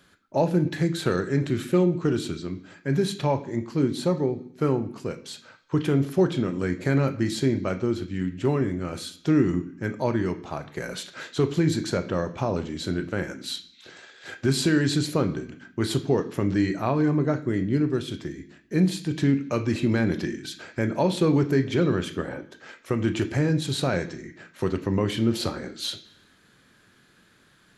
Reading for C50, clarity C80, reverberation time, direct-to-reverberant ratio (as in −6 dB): 14.0 dB, 17.0 dB, 0.65 s, 8.0 dB